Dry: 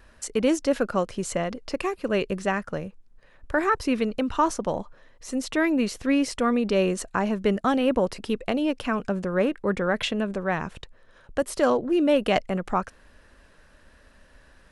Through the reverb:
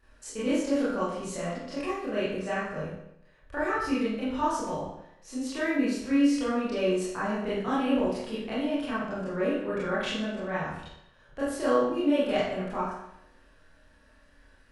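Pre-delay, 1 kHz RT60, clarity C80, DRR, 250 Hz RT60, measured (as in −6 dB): 24 ms, 0.80 s, 3.5 dB, −10.5 dB, 0.80 s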